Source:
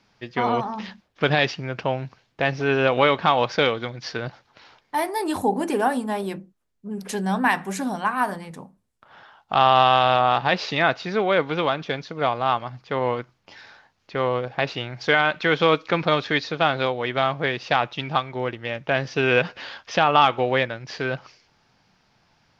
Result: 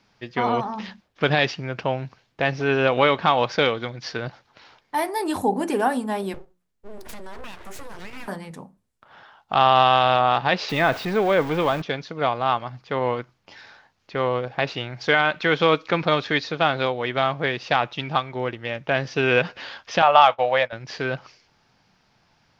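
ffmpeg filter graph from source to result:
-filter_complex "[0:a]asettb=1/sr,asplit=3[a][b][c];[a]atrim=end=6.344[d];[b]atrim=start=6.34:end=8.28,asetpts=PTS-STARTPTS,afade=t=in:d=0.004:c=qsin,afade=t=out:st=1.936:d=0.004:c=qsin,bandreject=f=60:t=h:w=6,bandreject=f=120:t=h:w=6,bandreject=f=180:t=h:w=6,acompressor=threshold=-31dB:ratio=10:attack=3.2:release=140:knee=1:detection=peak,aeval=exprs='abs(val(0))':c=same[e];[c]atrim=start=8.276[f];[d][e]acrossfade=d=0.004:c1=hsin:c2=qsin[g];[g][f]acrossfade=d=0.004:c1=qsin:c2=hsin,asettb=1/sr,asplit=3[h][i][j];[h]atrim=end=10.694[k];[i]atrim=start=10.69:end=11.82,asetpts=PTS-STARTPTS,afade=t=in:d=0.004:c=qsin,afade=t=out:st=1.126:d=0.004:c=qsin,aeval=exprs='val(0)+0.5*0.0447*sgn(val(0))':c=same,equalizer=f=10k:w=0.37:g=-10.5,bandreject=f=1.4k:w=20[l];[j]atrim=start=11.816[m];[k][l]acrossfade=d=0.004:c1=hsin:c2=qsin[n];[n][m]acrossfade=d=0.004:c1=qsin:c2=hsin,asettb=1/sr,asplit=3[o][p][q];[o]atrim=end=20.024[r];[p]atrim=start=20.02:end=20.73,asetpts=PTS-STARTPTS,afade=t=in:d=0.004:c=qsin,afade=t=out:st=0.706:d=0.004:c=qsin,agate=range=-33dB:threshold=-24dB:ratio=3:release=100:detection=peak,lowshelf=f=460:t=q:w=3:g=-8.5[s];[q]atrim=start=20.726[t];[r][s]acrossfade=d=0.004:c1=hsin:c2=qsin[u];[u][t]acrossfade=d=0.004:c1=qsin:c2=hsin"

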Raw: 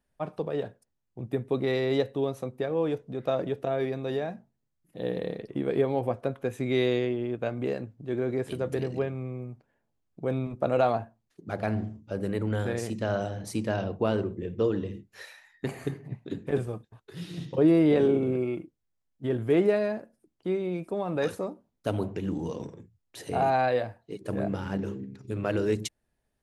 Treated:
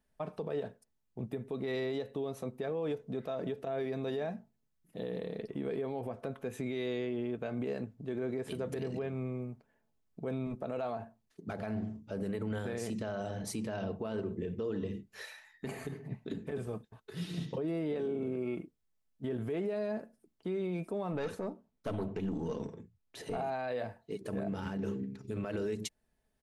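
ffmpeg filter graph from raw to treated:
-filter_complex "[0:a]asettb=1/sr,asplit=3[a][b][c];[a]atrim=end=21.124[d];[b]atrim=start=21.12:end=23.37,asetpts=PTS-STARTPTS,afade=t=in:d=0.004:c=qsin,afade=t=out:st=2.246:d=0.004:c=qsin,highshelf=f=7.1k:g=-9.5,aeval=exprs='(tanh(15.8*val(0)+0.3)-tanh(0.3))/15.8':c=same[e];[c]atrim=start=23.366[f];[d][e]acrossfade=d=0.004:c1=hsin:c2=qsin[g];[g][f]acrossfade=d=0.004:c1=qsin:c2=hsin,aecho=1:1:4.6:0.32,acompressor=threshold=-27dB:ratio=6,alimiter=level_in=2.5dB:limit=-24dB:level=0:latency=1:release=58,volume=-2.5dB,volume=-1dB"

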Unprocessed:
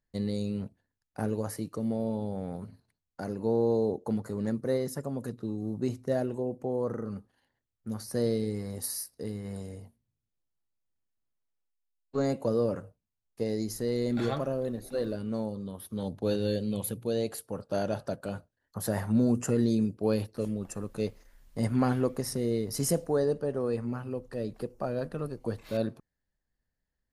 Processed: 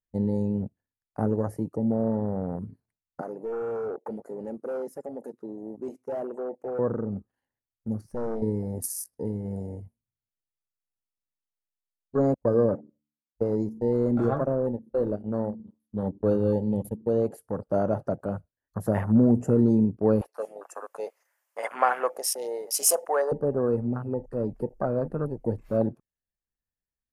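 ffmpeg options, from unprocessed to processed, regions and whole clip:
-filter_complex "[0:a]asettb=1/sr,asplit=3[a][b][c];[a]atrim=end=3.214[d];[b]atrim=start=3.21:end=6.79,asetpts=PTS-STARTPTS,afade=t=in:d=0.004:c=qsin,afade=t=out:st=3.576:d=0.004:c=qsin,highpass=450,asoftclip=type=hard:threshold=-34dB[e];[c]atrim=start=6.786[f];[d][e]acrossfade=d=0.004:c1=hsin:c2=qsin[g];[g][f]acrossfade=d=0.004:c1=qsin:c2=hsin,asettb=1/sr,asplit=3[h][i][j];[h]atrim=end=8.014[k];[i]atrim=start=8.01:end=8.42,asetpts=PTS-STARTPTS,afade=t=in:d=0.004:c=qsin,afade=t=out:st=0.406:d=0.004:c=qsin,lowpass=8k,aeval=exprs='(tanh(44.7*val(0)+0.75)-tanh(0.75))/44.7':c=same[l];[j]atrim=start=8.416[m];[k][l]acrossfade=d=0.004:c1=hsin:c2=qsin[n];[n][m]acrossfade=d=0.004:c1=qsin:c2=hsin,asettb=1/sr,asplit=3[o][p][q];[o]atrim=end=12.344[r];[p]atrim=start=12.34:end=17.31,asetpts=PTS-STARTPTS,afade=t=in:d=0.004:c=qsin,afade=t=out:st=4.966:d=0.004:c=qsin,agate=range=-33dB:threshold=-35dB:ratio=16:release=100:detection=peak,bandreject=f=73.67:t=h:w=4,bandreject=f=147.34:t=h:w=4,bandreject=f=221.01:t=h:w=4,bandreject=f=294.68:t=h:w=4,asplit=2[s][t];[t]adelay=81,lowpass=f=820:p=1,volume=-23.5dB,asplit=2[u][v];[v]adelay=81,lowpass=f=820:p=1,volume=0.44,asplit=2[w][x];[x]adelay=81,lowpass=f=820:p=1,volume=0.44[y];[s][u][w][y]amix=inputs=4:normalize=0,atrim=end_sample=219177[z];[q]atrim=start=17.306[aa];[r][z]acrossfade=d=0.004:c1=hsin:c2=qsin[ab];[ab][aa]acrossfade=d=0.004:c1=qsin:c2=hsin,asettb=1/sr,asplit=3[ac][ad][ae];[ac]atrim=end=20.214[af];[ad]atrim=start=20.21:end=23.32,asetpts=PTS-STARTPTS,afade=t=in:d=0.004:c=qsin,afade=t=out:st=3.106:d=0.004:c=qsin,highpass=f=650:w=0.5412,highpass=f=650:w=1.3066,acontrast=74[ag];[ae]atrim=start=23.316[ah];[af][ag]acrossfade=d=0.004:c1=hsin:c2=qsin[ai];[ai][ah]acrossfade=d=0.004:c1=qsin:c2=hsin,afwtdn=0.01,equalizer=f=3.9k:t=o:w=0.67:g=-11.5,volume=5.5dB"

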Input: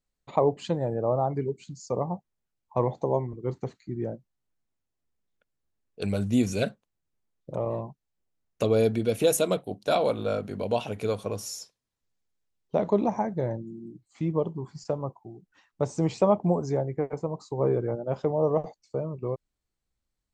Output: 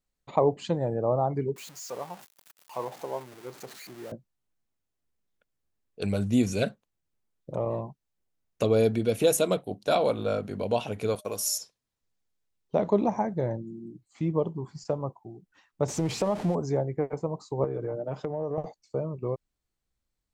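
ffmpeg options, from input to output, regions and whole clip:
-filter_complex "[0:a]asettb=1/sr,asplit=3[a][b][c];[a]atrim=end=1.564[d];[b]atrim=start=1.56:end=4.12,asetpts=PTS-STARTPTS,afade=t=in:d=0.004:c=qsin,afade=t=out:st=2.556:d=0.004:c=qsin,aeval=exprs='val(0)+0.5*0.0158*sgn(val(0))':c=same,highpass=f=1.3k:p=1,equalizer=f=3.8k:w=0.4:g=-3.5[e];[c]atrim=start=4.116[f];[d][e]acrossfade=d=0.004:c1=hsin:c2=qsin[g];[g][f]acrossfade=d=0.004:c1=qsin:c2=hsin,asettb=1/sr,asplit=3[h][i][j];[h]atrim=end=11.154[k];[i]atrim=start=11.15:end=11.58,asetpts=PTS-STARTPTS,afade=t=in:d=0.004:c=qsin,afade=t=out:st=0.426:d=0.004:c=qsin,agate=range=-31dB:threshold=-42dB:ratio=16:release=100:detection=peak,aemphasis=mode=production:type=bsi,aeval=exprs='val(0)+0.00158*sin(2*PI*610*n/s)':c=same[l];[j]atrim=start=11.576[m];[k][l]acrossfade=d=0.004:c1=hsin:c2=qsin[n];[n][m]acrossfade=d=0.004:c1=qsin:c2=hsin,asettb=1/sr,asplit=3[o][p][q];[o]atrim=end=15.884[r];[p]atrim=start=15.88:end=16.55,asetpts=PTS-STARTPTS,afade=t=in:d=0.004:c=qsin,afade=t=out:st=0.666:d=0.004:c=qsin,aeval=exprs='val(0)+0.5*0.0224*sgn(val(0))':c=same,lowpass=10k,acompressor=threshold=-22dB:ratio=4:attack=3.2:release=140:knee=1:detection=peak[s];[q]atrim=start=16.546[t];[r][s]acrossfade=d=0.004:c1=hsin:c2=qsin[u];[u][t]acrossfade=d=0.004:c1=qsin:c2=hsin,asettb=1/sr,asplit=3[v][w][x];[v]atrim=end=17.644[y];[w]atrim=start=17.64:end=18.58,asetpts=PTS-STARTPTS,afade=t=in:d=0.004:c=qsin,afade=t=out:st=0.936:d=0.004:c=qsin,highpass=110,aecho=1:1:6.6:0.56,atrim=end_sample=41454,acompressor=threshold=-27dB:ratio=10:attack=3.2:release=140:knee=1:detection=peak[z];[x]atrim=start=18.576[aa];[y][z]acrossfade=d=0.004:c1=hsin:c2=qsin[ab];[ab][aa]acrossfade=d=0.004:c1=qsin:c2=hsin"

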